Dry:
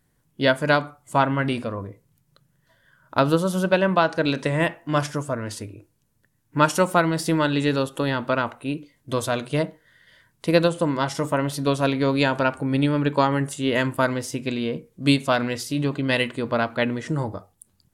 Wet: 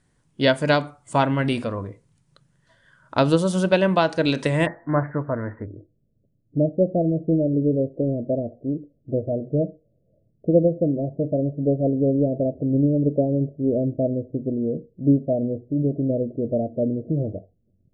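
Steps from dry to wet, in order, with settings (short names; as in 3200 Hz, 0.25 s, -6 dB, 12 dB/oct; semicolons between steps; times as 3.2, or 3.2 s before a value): dynamic EQ 1300 Hz, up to -6 dB, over -35 dBFS, Q 1.4; steep low-pass 10000 Hz 96 dB/oct, from 4.65 s 2000 Hz, from 5.65 s 670 Hz; gain +2 dB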